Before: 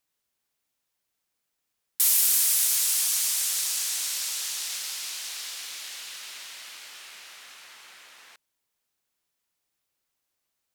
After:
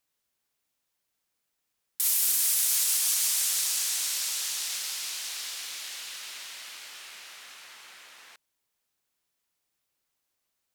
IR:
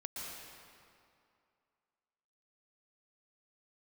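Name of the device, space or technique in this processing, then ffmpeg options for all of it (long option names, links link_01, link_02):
limiter into clipper: -af "alimiter=limit=-14.5dB:level=0:latency=1:release=99,asoftclip=type=hard:threshold=-15.5dB"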